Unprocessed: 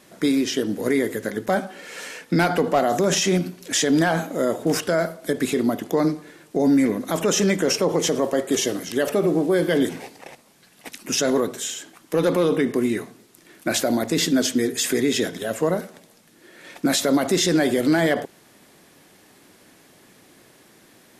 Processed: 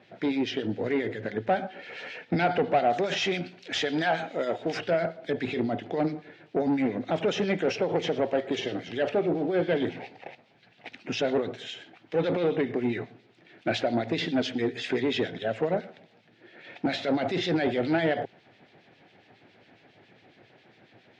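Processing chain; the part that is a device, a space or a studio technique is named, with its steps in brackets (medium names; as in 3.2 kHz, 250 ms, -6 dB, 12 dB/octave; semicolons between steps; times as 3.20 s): 2.93–4.79 s: tilt EQ +2.5 dB/octave; guitar amplifier with harmonic tremolo (harmonic tremolo 7.3 Hz, depth 70%, crossover 2 kHz; saturation -17.5 dBFS, distortion -14 dB; cabinet simulation 87–3800 Hz, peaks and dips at 110 Hz +8 dB, 200 Hz -3 dB, 290 Hz -3 dB, 750 Hz +5 dB, 1.1 kHz -9 dB, 2.4 kHz +3 dB)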